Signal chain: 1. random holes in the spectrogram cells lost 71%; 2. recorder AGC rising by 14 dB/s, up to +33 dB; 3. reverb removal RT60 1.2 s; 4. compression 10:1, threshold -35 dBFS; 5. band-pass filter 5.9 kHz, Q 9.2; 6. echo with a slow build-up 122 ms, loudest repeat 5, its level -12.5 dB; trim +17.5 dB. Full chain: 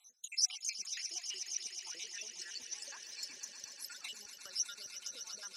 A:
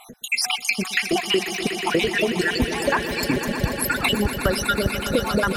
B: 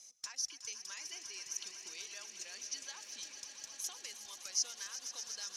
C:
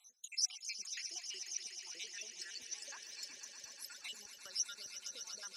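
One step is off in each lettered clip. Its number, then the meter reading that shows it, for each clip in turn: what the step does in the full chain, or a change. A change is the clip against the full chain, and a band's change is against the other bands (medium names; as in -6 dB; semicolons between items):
5, 8 kHz band -27.5 dB; 1, 4 kHz band -4.5 dB; 2, momentary loudness spread change -2 LU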